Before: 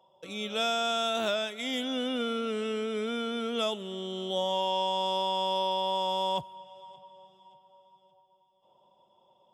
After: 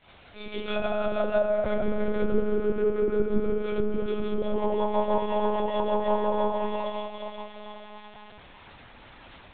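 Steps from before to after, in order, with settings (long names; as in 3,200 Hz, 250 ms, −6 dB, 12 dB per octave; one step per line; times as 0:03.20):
gap after every zero crossing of 0.071 ms
high-shelf EQ 2,900 Hz −11 dB
delay with a high-pass on its return 409 ms, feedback 58%, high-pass 1,500 Hz, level −7 dB
granular cloud 119 ms, grains 6.2 per second, pitch spread up and down by 0 semitones
surface crackle 180 per second −39 dBFS
rectangular room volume 140 cubic metres, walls hard, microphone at 2.2 metres
treble cut that deepens with the level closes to 1,300 Hz, closed at −19 dBFS
one-pitch LPC vocoder at 8 kHz 210 Hz
level −2 dB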